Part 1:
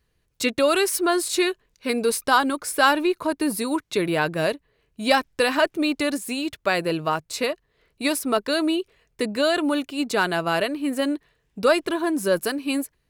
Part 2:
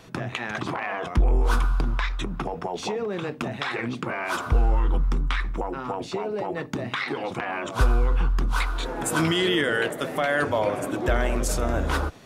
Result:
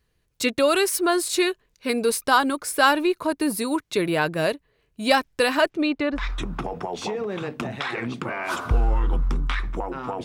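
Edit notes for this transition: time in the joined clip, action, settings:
part 1
0:05.69–0:06.26: low-pass filter 6,700 Hz → 1,200 Hz
0:06.19: continue with part 2 from 0:02.00, crossfade 0.14 s

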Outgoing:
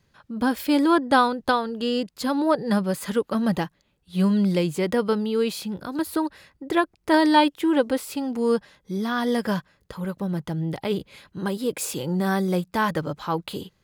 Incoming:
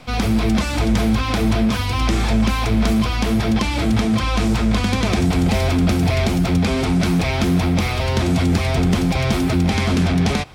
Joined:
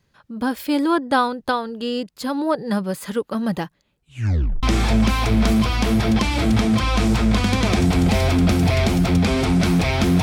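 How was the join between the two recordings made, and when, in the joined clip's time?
outgoing
0:03.98: tape stop 0.65 s
0:04.63: continue with incoming from 0:02.03

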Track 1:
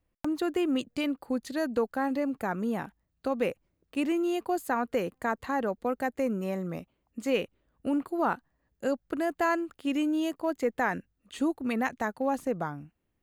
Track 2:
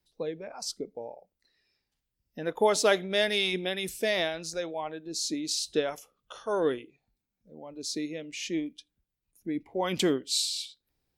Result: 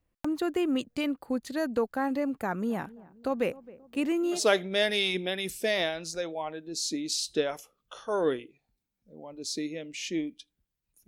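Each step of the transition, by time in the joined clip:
track 1
0:02.39–0:04.43: feedback echo with a low-pass in the loop 266 ms, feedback 52%, low-pass 880 Hz, level −19 dB
0:04.37: continue with track 2 from 0:02.76, crossfade 0.12 s

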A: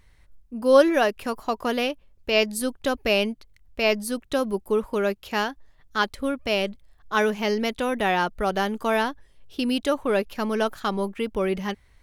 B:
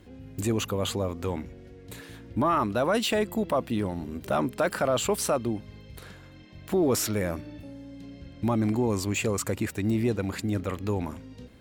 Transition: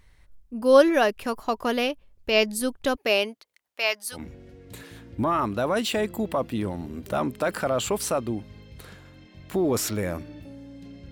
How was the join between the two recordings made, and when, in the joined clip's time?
A
0:02.95–0:04.25: high-pass filter 250 Hz → 1,400 Hz
0:04.18: continue with B from 0:01.36, crossfade 0.14 s

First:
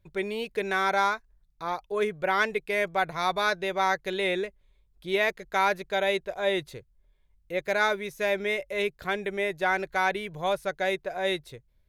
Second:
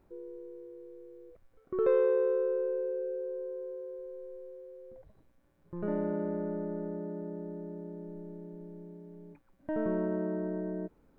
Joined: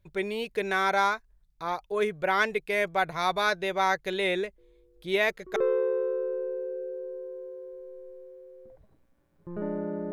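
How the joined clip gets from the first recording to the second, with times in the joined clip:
first
0:04.58: mix in second from 0:00.84 0.98 s −12.5 dB
0:05.56: continue with second from 0:01.82

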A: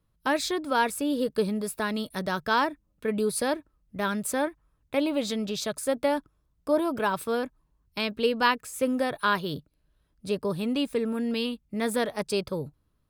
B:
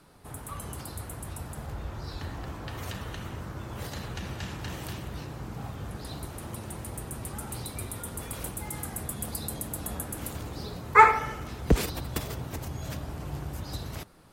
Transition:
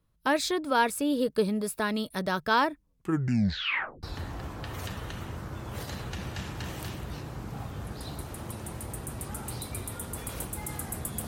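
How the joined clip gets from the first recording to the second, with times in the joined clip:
A
0:02.79: tape stop 1.24 s
0:04.03: continue with B from 0:02.07

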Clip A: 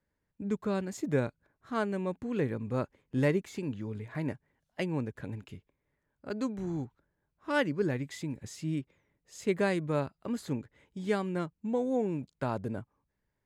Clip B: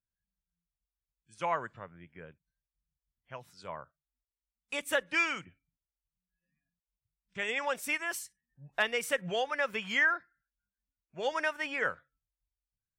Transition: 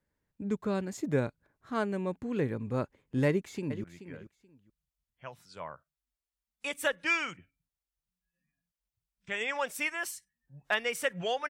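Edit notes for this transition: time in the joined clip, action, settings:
clip A
0:03.27–0:03.84: delay throw 430 ms, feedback 20%, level −12.5 dB
0:03.84: continue with clip B from 0:01.92

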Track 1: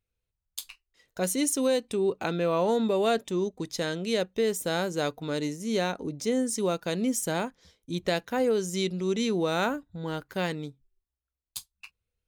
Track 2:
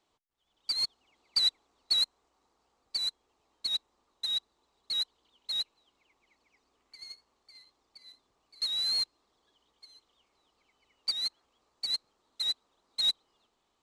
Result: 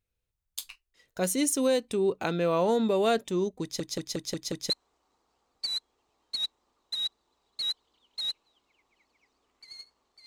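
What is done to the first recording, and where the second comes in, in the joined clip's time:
track 1
0:03.62: stutter in place 0.18 s, 6 plays
0:04.70: continue with track 2 from 0:02.01

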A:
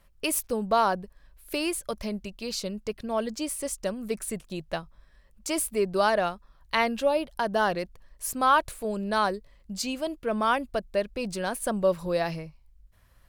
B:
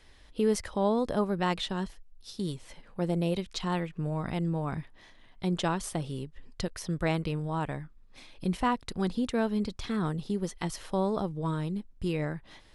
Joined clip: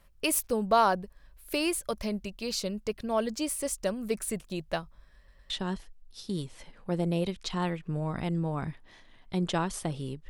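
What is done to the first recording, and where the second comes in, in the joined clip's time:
A
0:05.17: stutter in place 0.11 s, 3 plays
0:05.50: continue with B from 0:01.60

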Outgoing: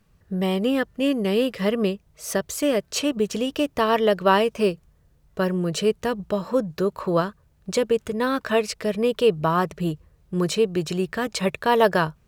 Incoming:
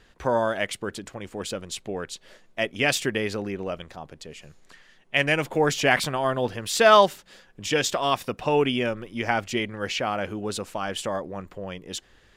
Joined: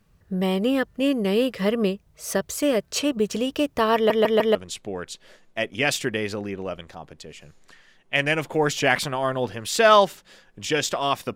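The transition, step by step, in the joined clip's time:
outgoing
0:03.95: stutter in place 0.15 s, 4 plays
0:04.55: continue with incoming from 0:01.56

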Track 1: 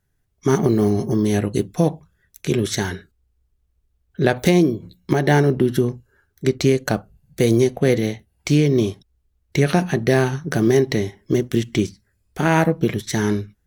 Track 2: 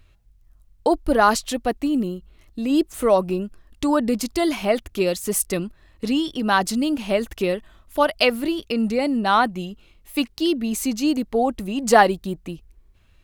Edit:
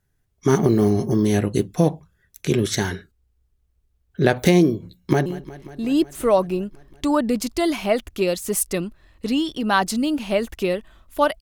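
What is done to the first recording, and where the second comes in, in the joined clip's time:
track 1
0:04.91–0:05.26: delay throw 180 ms, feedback 80%, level −17.5 dB
0:05.26: continue with track 2 from 0:02.05

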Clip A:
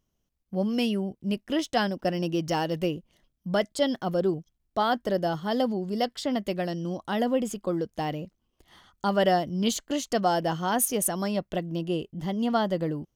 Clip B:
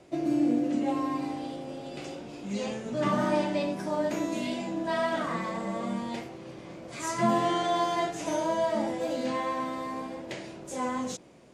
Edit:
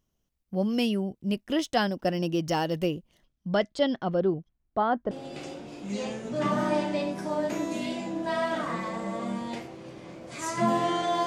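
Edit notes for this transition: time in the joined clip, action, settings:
clip A
0:03.25–0:05.11: low-pass filter 7,400 Hz → 1,200 Hz
0:05.11: continue with clip B from 0:01.72

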